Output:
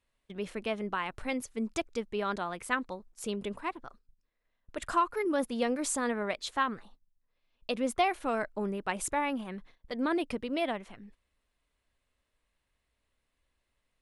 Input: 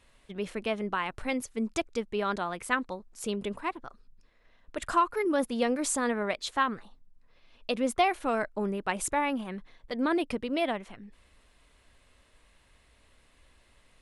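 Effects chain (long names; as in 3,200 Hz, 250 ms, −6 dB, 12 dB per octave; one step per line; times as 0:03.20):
noise gate −50 dBFS, range −15 dB
level −2.5 dB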